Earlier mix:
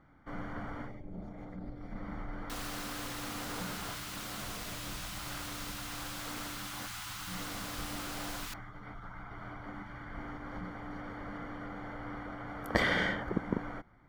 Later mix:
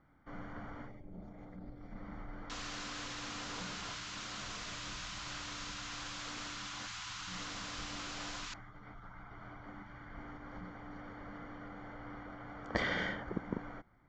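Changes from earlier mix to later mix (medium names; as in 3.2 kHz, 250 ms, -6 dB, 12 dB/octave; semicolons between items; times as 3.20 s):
speech -5.5 dB; master: add steep low-pass 7.4 kHz 96 dB/octave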